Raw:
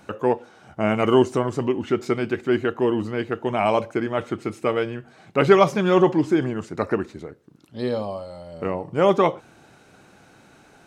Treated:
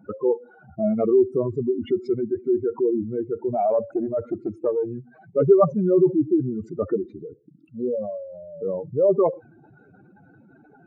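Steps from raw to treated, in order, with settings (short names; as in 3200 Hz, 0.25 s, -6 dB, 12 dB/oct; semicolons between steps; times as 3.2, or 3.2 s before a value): spectral contrast raised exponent 3.3; 3.54–4.86 Doppler distortion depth 0.1 ms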